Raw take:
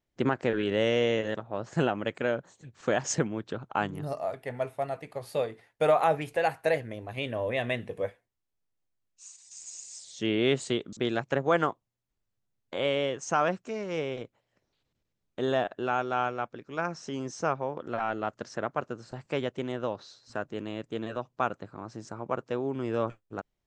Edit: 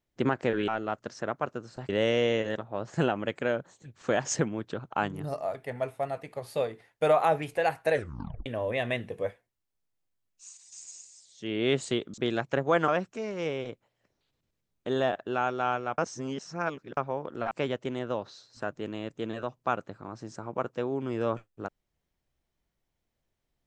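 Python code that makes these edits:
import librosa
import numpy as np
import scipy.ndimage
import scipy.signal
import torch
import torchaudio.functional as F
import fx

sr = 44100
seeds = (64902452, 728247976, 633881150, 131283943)

y = fx.edit(x, sr, fx.tape_stop(start_s=6.7, length_s=0.55),
    fx.fade_down_up(start_s=9.56, length_s=0.98, db=-10.0, fade_s=0.38),
    fx.cut(start_s=11.67, length_s=1.73),
    fx.reverse_span(start_s=16.5, length_s=0.99),
    fx.move(start_s=18.03, length_s=1.21, to_s=0.68), tone=tone)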